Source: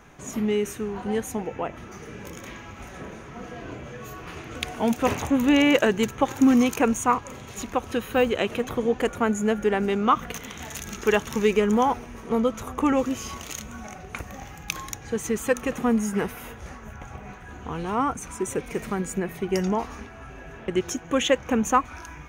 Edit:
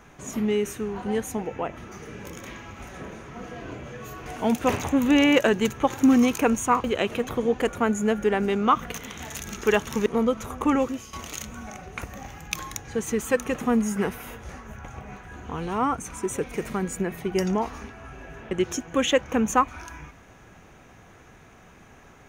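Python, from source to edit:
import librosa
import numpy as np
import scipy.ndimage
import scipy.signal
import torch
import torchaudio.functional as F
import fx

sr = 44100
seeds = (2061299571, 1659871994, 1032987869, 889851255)

y = fx.edit(x, sr, fx.cut(start_s=4.26, length_s=0.38),
    fx.cut(start_s=7.22, length_s=1.02),
    fx.cut(start_s=11.46, length_s=0.77),
    fx.fade_out_to(start_s=12.93, length_s=0.37, floor_db=-13.5), tone=tone)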